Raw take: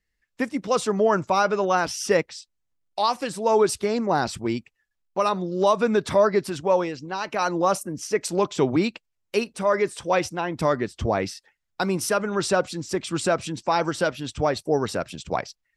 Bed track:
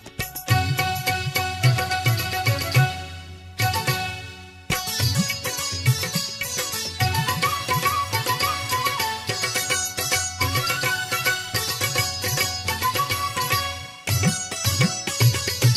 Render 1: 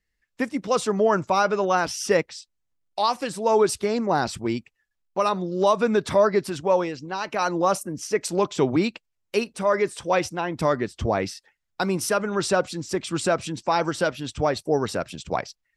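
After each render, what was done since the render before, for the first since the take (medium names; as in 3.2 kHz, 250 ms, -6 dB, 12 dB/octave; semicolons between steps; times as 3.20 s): no audible change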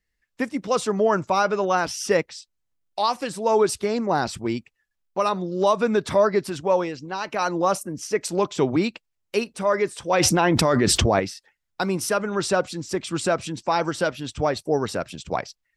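10.13–11.20 s: level flattener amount 100%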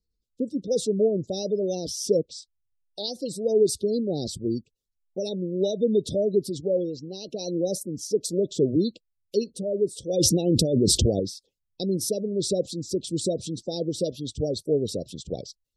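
Chebyshev band-stop 510–3700 Hz, order 3; spectral gate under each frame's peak -30 dB strong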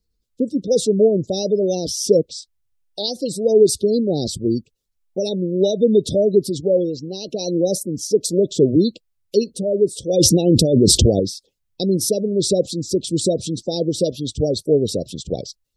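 trim +7.5 dB; peak limiter -2 dBFS, peak gain reduction 2.5 dB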